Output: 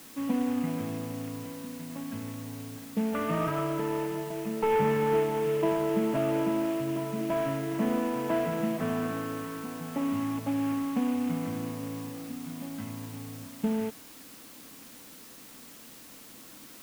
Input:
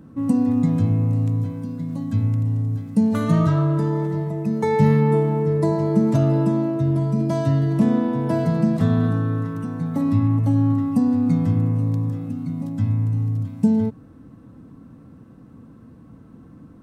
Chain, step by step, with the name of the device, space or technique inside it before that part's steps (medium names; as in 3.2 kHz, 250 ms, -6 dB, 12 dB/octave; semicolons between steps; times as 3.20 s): army field radio (band-pass 350–3300 Hz; CVSD coder 16 kbps; white noise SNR 19 dB); trim -2.5 dB